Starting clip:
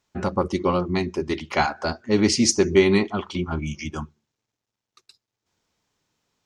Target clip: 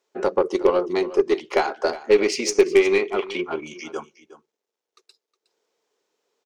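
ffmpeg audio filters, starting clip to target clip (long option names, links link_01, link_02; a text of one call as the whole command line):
ffmpeg -i in.wav -filter_complex "[0:a]asettb=1/sr,asplit=3[link_01][link_02][link_03];[link_01]atrim=end=2.094[link_04];[link_02]atrim=start=2.09:end=3.61,asetpts=PTS-STARTPTS,afade=type=in:duration=0.004:curve=qsin,afade=type=out:start_time=1.516:duration=0.004:curve=qsin,equalizer=frequency=2400:width_type=o:width=0.6:gain=11[link_05];[link_03]atrim=start=3.606[link_06];[link_04][link_05]acrossfade=duration=0.004:curve1=hsin:curve2=qsin[link_07];[link_07][link_06]acrossfade=duration=0.004:curve1=qsin:curve2=hsin,acompressor=threshold=-19dB:ratio=6,highpass=frequency=430:width_type=q:width=4.2,aeval=exprs='0.531*(cos(1*acos(clip(val(0)/0.531,-1,1)))-cos(1*PI/2))+0.0237*(cos(6*acos(clip(val(0)/0.531,-1,1)))-cos(6*PI/2))+0.0188*(cos(7*acos(clip(val(0)/0.531,-1,1)))-cos(7*PI/2))+0.015*(cos(8*acos(clip(val(0)/0.531,-1,1)))-cos(8*PI/2))':channel_layout=same,aecho=1:1:364:0.15" out.wav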